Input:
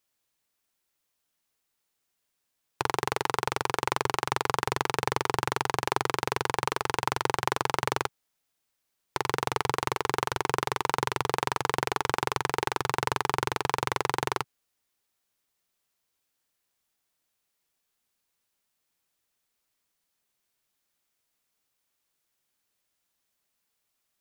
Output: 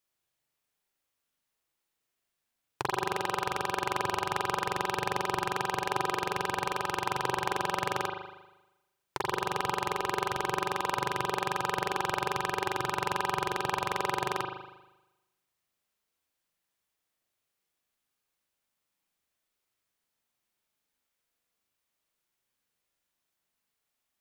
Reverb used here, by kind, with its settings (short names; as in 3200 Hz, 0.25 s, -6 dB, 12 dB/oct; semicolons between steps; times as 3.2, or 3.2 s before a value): spring tank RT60 1 s, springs 39 ms, chirp 30 ms, DRR 0 dB; gain -5 dB